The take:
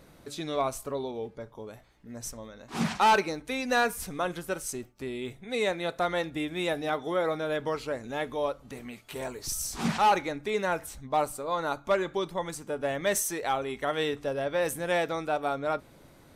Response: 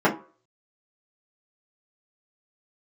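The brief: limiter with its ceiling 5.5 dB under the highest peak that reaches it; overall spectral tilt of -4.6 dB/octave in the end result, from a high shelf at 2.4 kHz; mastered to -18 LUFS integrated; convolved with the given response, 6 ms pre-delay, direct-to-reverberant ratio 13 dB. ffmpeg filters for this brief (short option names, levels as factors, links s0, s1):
-filter_complex "[0:a]highshelf=f=2400:g=-6,alimiter=limit=0.075:level=0:latency=1,asplit=2[s0][s1];[1:a]atrim=start_sample=2205,adelay=6[s2];[s1][s2]afir=irnorm=-1:irlink=0,volume=0.0251[s3];[s0][s3]amix=inputs=2:normalize=0,volume=5.62"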